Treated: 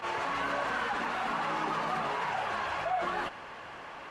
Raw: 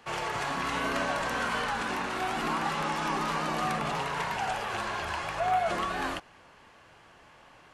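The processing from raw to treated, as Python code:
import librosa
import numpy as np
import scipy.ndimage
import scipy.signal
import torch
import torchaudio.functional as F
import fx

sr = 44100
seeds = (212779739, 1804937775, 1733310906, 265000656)

y = fx.lowpass(x, sr, hz=2200.0, slope=6)
y = fx.low_shelf(y, sr, hz=280.0, db=-10.5)
y = fx.stretch_vocoder_free(y, sr, factor=0.53)
y = fx.env_flatten(y, sr, amount_pct=50)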